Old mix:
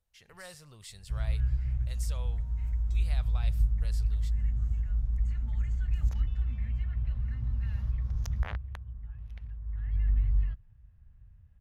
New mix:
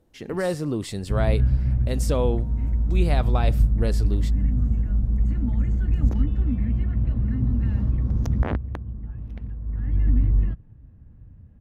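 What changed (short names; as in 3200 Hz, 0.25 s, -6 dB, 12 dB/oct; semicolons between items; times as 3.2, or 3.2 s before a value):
speech +8.5 dB; master: remove passive tone stack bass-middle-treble 10-0-10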